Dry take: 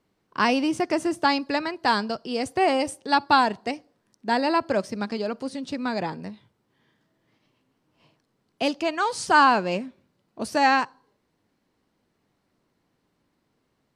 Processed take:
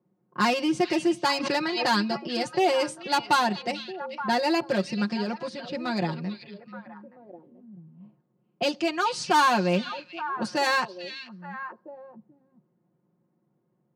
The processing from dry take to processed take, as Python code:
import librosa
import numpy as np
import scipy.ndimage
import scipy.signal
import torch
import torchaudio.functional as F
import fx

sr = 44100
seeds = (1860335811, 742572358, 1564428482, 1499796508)

p1 = scipy.signal.sosfilt(scipy.signal.butter(2, 5500.0, 'lowpass', fs=sr, output='sos'), x)
p2 = fx.low_shelf(p1, sr, hz=180.0, db=11.5)
p3 = 10.0 ** (-17.5 / 20.0) * (np.abs((p2 / 10.0 ** (-17.5 / 20.0) + 3.0) % 4.0 - 2.0) - 1.0)
p4 = p2 + F.gain(torch.from_numpy(p3), -7.0).numpy()
p5 = scipy.signal.sosfilt(scipy.signal.butter(4, 120.0, 'highpass', fs=sr, output='sos'), p4)
p6 = fx.high_shelf(p5, sr, hz=3500.0, db=9.0)
p7 = fx.env_lowpass(p6, sr, base_hz=820.0, full_db=-18.0)
p8 = p7 + 0.97 * np.pad(p7, (int(5.6 * sr / 1000.0), 0))[:len(p7)]
p9 = fx.echo_stepped(p8, sr, ms=436, hz=3200.0, octaves=-1.4, feedback_pct=70, wet_db=-7)
p10 = fx.pre_swell(p9, sr, db_per_s=39.0, at=(1.4, 1.88))
y = F.gain(torch.from_numpy(p10), -8.5).numpy()